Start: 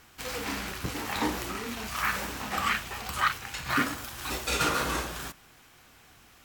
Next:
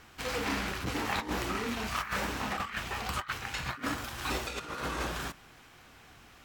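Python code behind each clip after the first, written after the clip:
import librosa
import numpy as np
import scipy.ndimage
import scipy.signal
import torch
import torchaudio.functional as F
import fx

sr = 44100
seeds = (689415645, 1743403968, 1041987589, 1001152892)

y = fx.over_compress(x, sr, threshold_db=-32.0, ratio=-0.5)
y = fx.high_shelf(y, sr, hz=6700.0, db=-10.0)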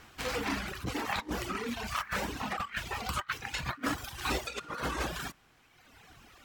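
y = fx.dereverb_blind(x, sr, rt60_s=1.6)
y = fx.rider(y, sr, range_db=10, speed_s=2.0)
y = y * 10.0 ** (1.5 / 20.0)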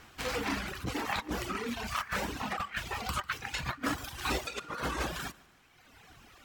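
y = fx.echo_feedback(x, sr, ms=147, feedback_pct=40, wet_db=-22.5)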